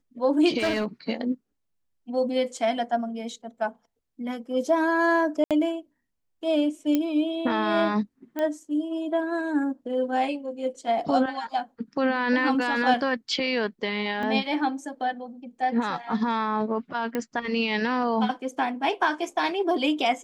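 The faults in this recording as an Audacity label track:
0.580000	0.860000	clipping −20.5 dBFS
5.440000	5.510000	drop-out 67 ms
6.950000	6.950000	click −11 dBFS
8.390000	8.390000	click −17 dBFS
14.230000	14.230000	drop-out 2.1 ms
17.150000	17.150000	click −15 dBFS

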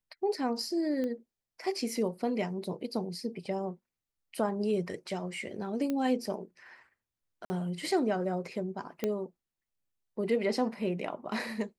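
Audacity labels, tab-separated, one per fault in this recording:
1.040000	1.040000	click −24 dBFS
5.900000	5.900000	click −20 dBFS
7.450000	7.500000	drop-out 50 ms
9.040000	9.040000	click −17 dBFS

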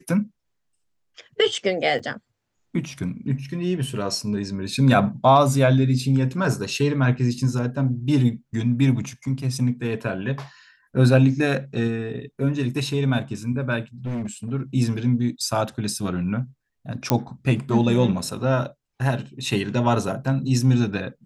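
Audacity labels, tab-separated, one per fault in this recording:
1.990000	2.000000	drop-out 5.5 ms
14.050000	14.520000	clipping −24.5 dBFS
17.100000	17.100000	click −3 dBFS

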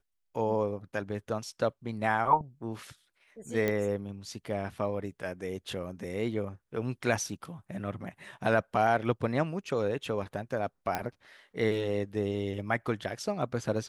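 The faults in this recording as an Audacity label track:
3.680000	3.680000	click −16 dBFS
7.340000	7.340000	drop-out 3.4 ms
10.950000	10.950000	click −15 dBFS

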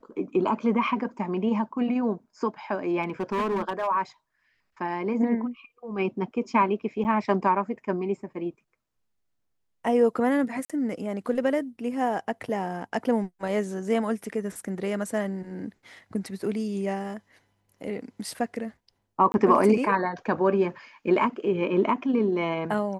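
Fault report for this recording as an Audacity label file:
3.020000	3.880000	clipping −23 dBFS
7.040000	7.050000	drop-out 8.9 ms
10.650000	10.700000	drop-out 46 ms
19.320000	19.340000	drop-out 21 ms

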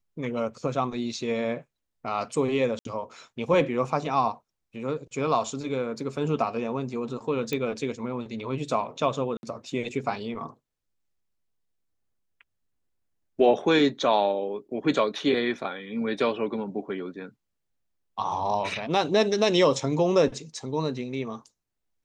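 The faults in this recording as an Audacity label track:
2.790000	2.850000	drop-out 62 ms
7.530000	7.530000	click −15 dBFS
9.370000	9.430000	drop-out 61 ms

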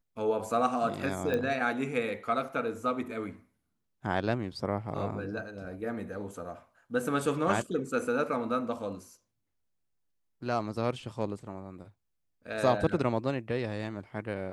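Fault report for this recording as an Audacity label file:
1.340000	1.340000	click −19 dBFS

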